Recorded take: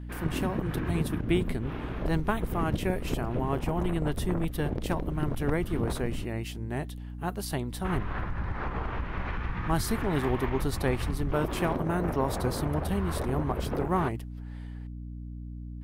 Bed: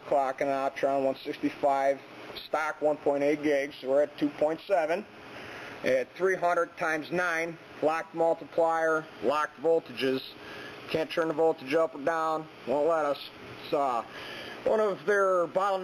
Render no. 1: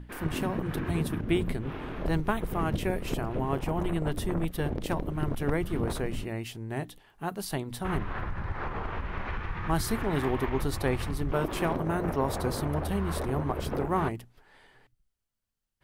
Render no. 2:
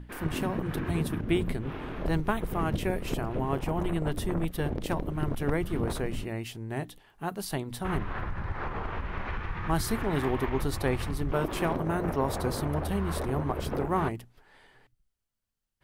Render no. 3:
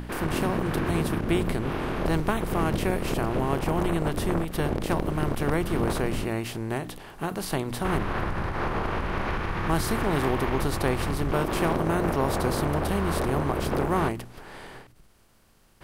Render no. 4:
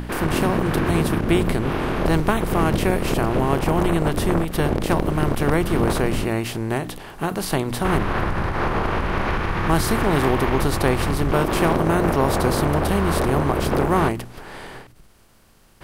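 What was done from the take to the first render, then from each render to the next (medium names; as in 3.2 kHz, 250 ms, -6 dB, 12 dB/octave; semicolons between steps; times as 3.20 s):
hum notches 60/120/180/240/300 Hz
no audible change
spectral levelling over time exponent 0.6; endings held to a fixed fall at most 110 dB/s
trim +6 dB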